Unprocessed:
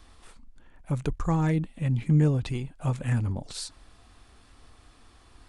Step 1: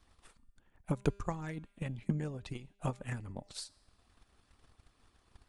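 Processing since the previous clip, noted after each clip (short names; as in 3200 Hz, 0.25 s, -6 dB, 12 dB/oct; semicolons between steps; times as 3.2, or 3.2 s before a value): harmonic-percussive split harmonic -9 dB; transient shaper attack +10 dB, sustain -3 dB; resonator 200 Hz, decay 1 s, mix 40%; gain -5 dB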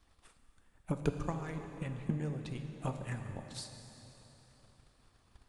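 plate-style reverb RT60 3.7 s, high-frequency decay 0.85×, DRR 5.5 dB; gain -1.5 dB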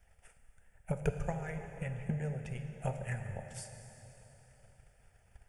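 fixed phaser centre 1100 Hz, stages 6; gain +4 dB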